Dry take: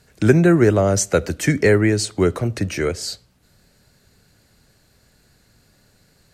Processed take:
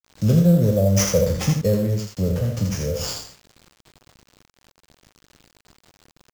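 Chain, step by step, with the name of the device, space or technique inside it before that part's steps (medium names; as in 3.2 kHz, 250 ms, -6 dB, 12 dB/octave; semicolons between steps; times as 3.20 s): spectral sustain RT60 0.51 s; 1.53–2.17 s: gate -16 dBFS, range -27 dB; FFT filter 200 Hz 0 dB, 360 Hz -22 dB, 520 Hz +1 dB, 990 Hz -27 dB, 1.9 kHz -28 dB, 3.2 kHz -28 dB, 5.2 kHz +3 dB, 8.2 kHz -17 dB, 12 kHz +11 dB; delay 81 ms -5.5 dB; early 8-bit sampler (sample-rate reducer 12 kHz, jitter 0%; bit crusher 8-bit)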